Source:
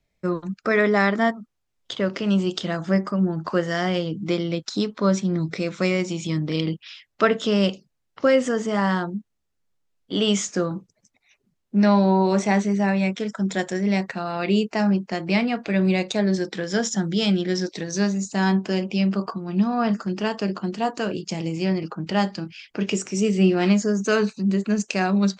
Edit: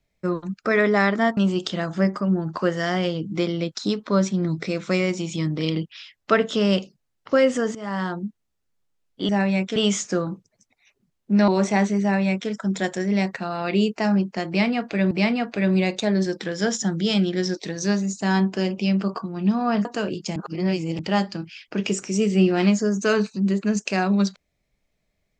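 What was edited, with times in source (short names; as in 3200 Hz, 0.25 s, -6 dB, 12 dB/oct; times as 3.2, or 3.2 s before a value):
1.37–2.28 cut
8.66–9.15 fade in, from -14.5 dB
11.92–12.23 cut
12.77–13.24 copy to 10.2
15.23–15.86 loop, 2 plays
19.97–20.88 cut
21.39–22.02 reverse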